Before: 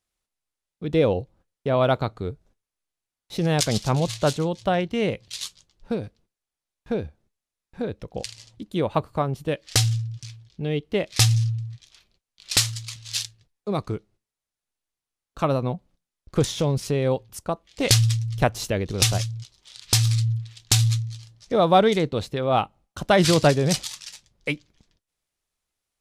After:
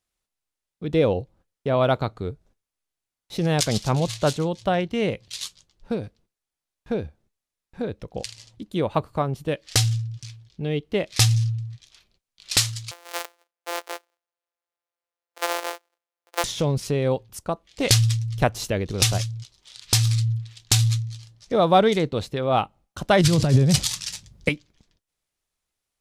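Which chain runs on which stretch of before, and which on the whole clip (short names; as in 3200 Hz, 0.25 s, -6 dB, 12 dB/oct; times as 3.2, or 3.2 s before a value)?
12.91–16.44 sample sorter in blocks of 256 samples + inverse Chebyshev high-pass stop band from 180 Hz, stop band 50 dB
23.21–24.49 HPF 45 Hz + tone controls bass +13 dB, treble +3 dB + negative-ratio compressor -17 dBFS
whole clip: dry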